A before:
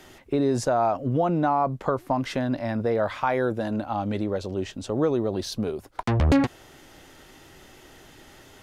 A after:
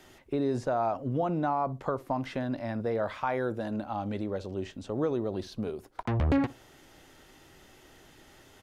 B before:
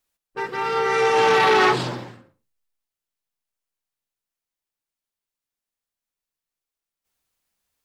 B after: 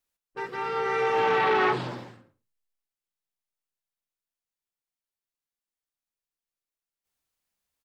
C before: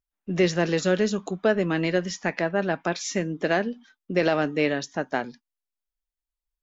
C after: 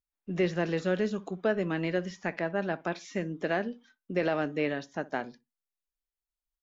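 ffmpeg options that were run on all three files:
-filter_complex "[0:a]acrossover=split=3300[link_01][link_02];[link_02]acompressor=threshold=-45dB:ratio=4:attack=1:release=60[link_03];[link_01][link_03]amix=inputs=2:normalize=0,asplit=2[link_04][link_05];[link_05]adelay=61,lowpass=frequency=990:poles=1,volume=-18dB,asplit=2[link_06][link_07];[link_07]adelay=61,lowpass=frequency=990:poles=1,volume=0.23[link_08];[link_04][link_06][link_08]amix=inputs=3:normalize=0,volume=-6dB"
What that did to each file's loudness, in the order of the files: −6.0, −6.5, −6.0 LU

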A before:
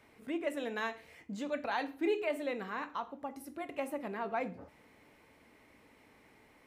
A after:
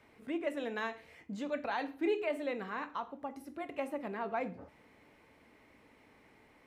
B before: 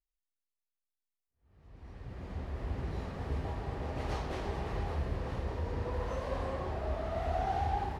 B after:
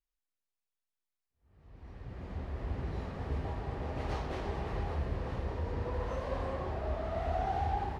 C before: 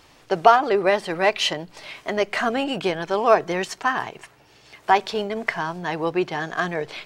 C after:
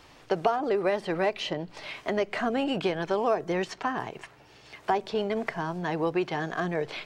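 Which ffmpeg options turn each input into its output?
-filter_complex "[0:a]acrossover=split=630|6200[link_01][link_02][link_03];[link_01]acompressor=threshold=-25dB:ratio=4[link_04];[link_02]acompressor=threshold=-32dB:ratio=4[link_05];[link_03]acompressor=threshold=-55dB:ratio=4[link_06];[link_04][link_05][link_06]amix=inputs=3:normalize=0,highshelf=frequency=6400:gain=-7"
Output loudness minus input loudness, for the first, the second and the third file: −0.5, 0.0, −7.0 LU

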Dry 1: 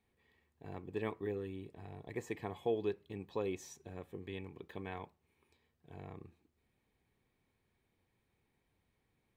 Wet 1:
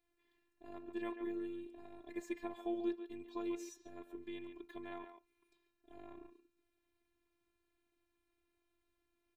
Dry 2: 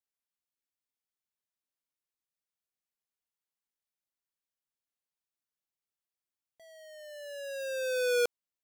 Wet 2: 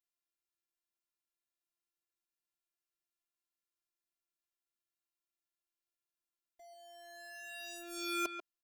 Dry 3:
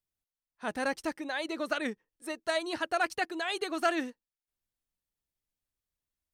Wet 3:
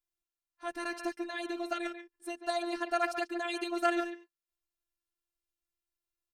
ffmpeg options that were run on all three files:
-filter_complex "[0:a]afftfilt=real='hypot(re,im)*cos(PI*b)':imag='0':win_size=512:overlap=0.75,asplit=2[link_01][link_02];[link_02]adelay=140,highpass=300,lowpass=3400,asoftclip=type=hard:threshold=-21dB,volume=-8dB[link_03];[link_01][link_03]amix=inputs=2:normalize=0"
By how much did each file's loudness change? −2.0, −8.5, −2.0 LU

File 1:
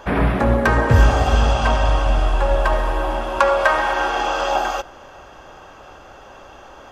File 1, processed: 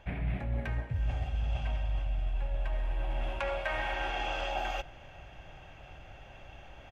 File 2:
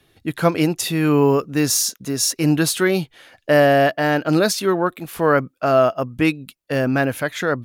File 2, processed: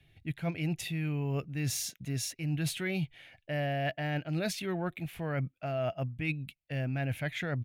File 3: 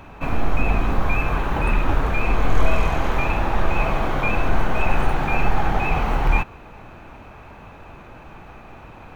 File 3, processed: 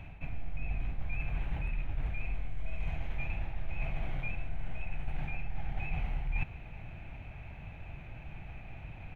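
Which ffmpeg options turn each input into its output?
-af "firequalizer=gain_entry='entry(150,0);entry(210,-10);entry(460,-16);entry(690,-9);entry(1100,-20);entry(2200,-2);entry(4800,-16)':delay=0.05:min_phase=1,areverse,acompressor=threshold=-29dB:ratio=10,areverse"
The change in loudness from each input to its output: −16.5, −15.5, −17.5 LU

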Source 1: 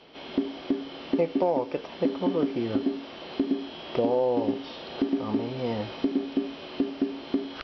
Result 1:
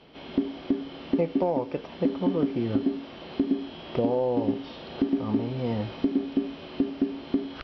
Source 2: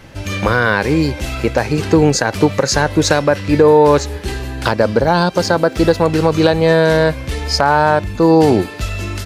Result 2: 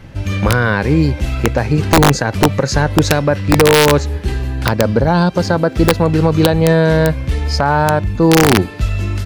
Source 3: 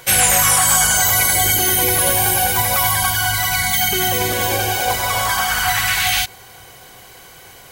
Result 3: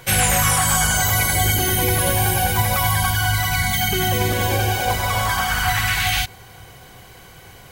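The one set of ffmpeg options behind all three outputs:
-af "bass=frequency=250:gain=8,treble=frequency=4000:gain=-4,aeval=exprs='(mod(0.944*val(0)+1,2)-1)/0.944':channel_layout=same,volume=-2dB"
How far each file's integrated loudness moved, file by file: +0.5, +0.5, −3.5 LU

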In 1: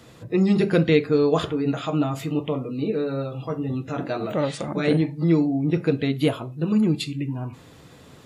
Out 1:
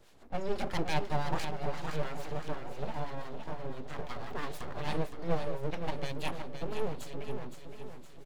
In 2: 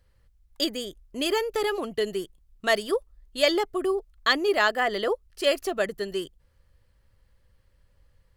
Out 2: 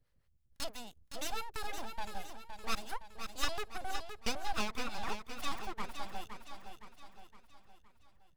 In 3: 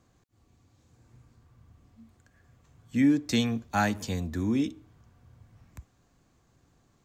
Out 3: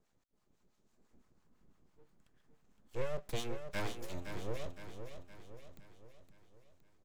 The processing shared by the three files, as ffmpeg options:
-filter_complex "[0:a]acrossover=split=520[link_01][link_02];[link_01]aeval=exprs='val(0)*(1-0.7/2+0.7/2*cos(2*PI*6*n/s))':channel_layout=same[link_03];[link_02]aeval=exprs='val(0)*(1-0.7/2-0.7/2*cos(2*PI*6*n/s))':channel_layout=same[link_04];[link_03][link_04]amix=inputs=2:normalize=0,aeval=exprs='abs(val(0))':channel_layout=same,aecho=1:1:515|1030|1545|2060|2575|3090:0.398|0.195|0.0956|0.0468|0.023|0.0112,volume=-7dB"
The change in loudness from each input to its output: −15.0, −15.0, −15.5 LU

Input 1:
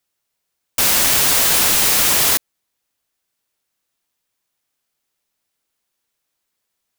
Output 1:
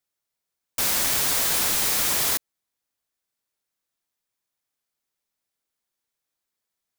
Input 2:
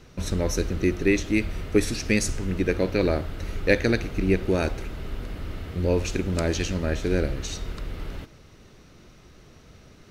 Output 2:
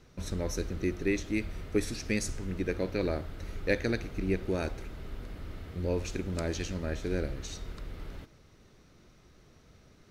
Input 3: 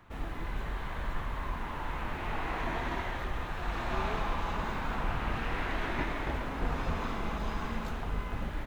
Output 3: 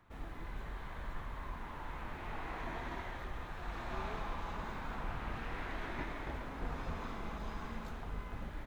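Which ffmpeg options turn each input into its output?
-af "equalizer=frequency=2800:width=5.3:gain=-3,volume=-8dB"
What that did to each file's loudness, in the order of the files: −8.0, −8.0, −8.0 LU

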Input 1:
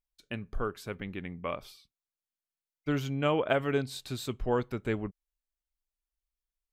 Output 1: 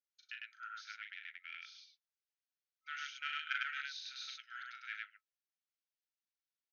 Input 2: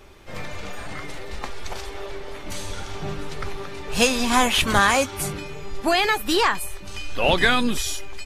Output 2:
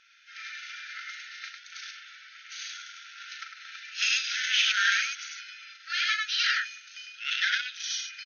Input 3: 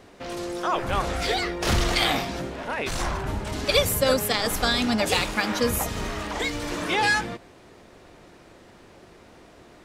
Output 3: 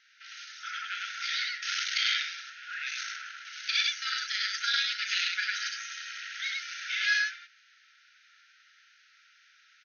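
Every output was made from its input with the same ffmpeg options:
-af "aecho=1:1:37.9|102:0.562|0.891,aeval=exprs='(tanh(3.55*val(0)+0.75)-tanh(0.75))/3.55':channel_layout=same,afftfilt=real='re*between(b*sr/4096,1300,6600)':imag='im*between(b*sr/4096,1300,6600)':win_size=4096:overlap=0.75,volume=-1.5dB"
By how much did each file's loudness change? −11.0, −6.0, −5.5 LU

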